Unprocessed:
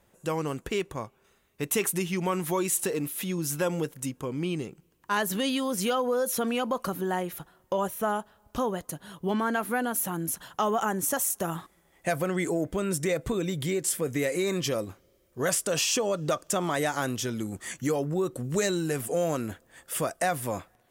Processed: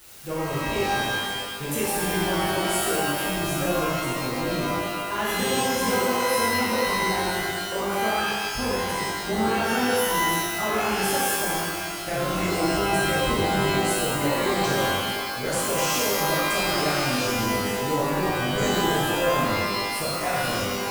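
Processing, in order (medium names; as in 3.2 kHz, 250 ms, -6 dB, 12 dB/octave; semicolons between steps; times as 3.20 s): bass shelf 110 Hz +11 dB; added noise white -44 dBFS; AM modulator 140 Hz, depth 40%; pitch-shifted reverb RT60 1.6 s, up +12 st, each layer -2 dB, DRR -8.5 dB; trim -6.5 dB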